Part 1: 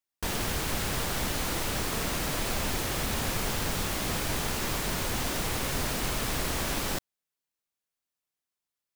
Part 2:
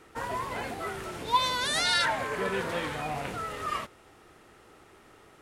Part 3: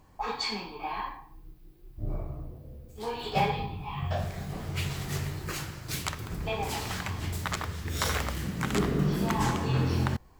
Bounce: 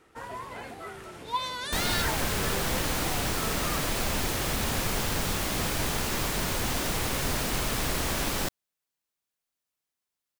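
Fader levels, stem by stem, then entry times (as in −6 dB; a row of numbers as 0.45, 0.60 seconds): +1.5 dB, −5.5 dB, muted; 1.50 s, 0.00 s, muted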